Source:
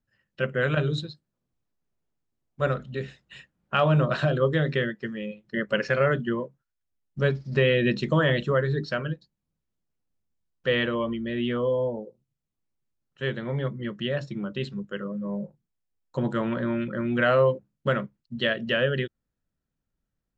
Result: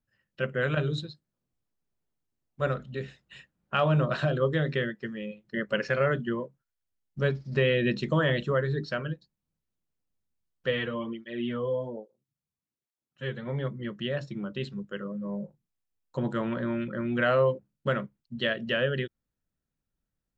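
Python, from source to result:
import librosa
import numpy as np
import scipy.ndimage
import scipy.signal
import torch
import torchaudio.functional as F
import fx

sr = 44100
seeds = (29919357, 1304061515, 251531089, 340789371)

y = fx.flanger_cancel(x, sr, hz=1.2, depth_ms=3.6, at=(10.7, 13.46), fade=0.02)
y = y * librosa.db_to_amplitude(-3.0)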